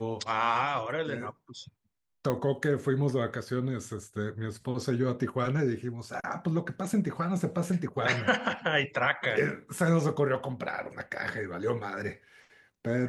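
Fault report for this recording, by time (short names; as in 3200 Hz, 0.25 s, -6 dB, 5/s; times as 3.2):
2.3 pop -16 dBFS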